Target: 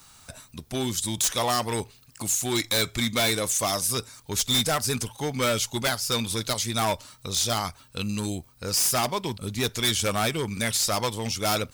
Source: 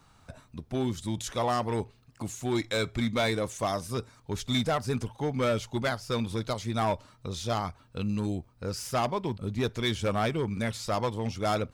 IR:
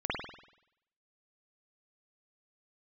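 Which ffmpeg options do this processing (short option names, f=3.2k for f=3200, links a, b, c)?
-af "crystalizer=i=7:c=0,aeval=exprs='0.15*(abs(mod(val(0)/0.15+3,4)-2)-1)':c=same"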